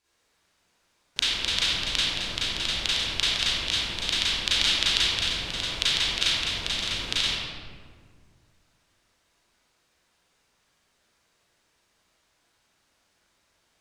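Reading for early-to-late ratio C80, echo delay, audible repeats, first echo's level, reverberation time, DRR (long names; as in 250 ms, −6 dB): −2.0 dB, no echo audible, no echo audible, no echo audible, 1.9 s, −11.0 dB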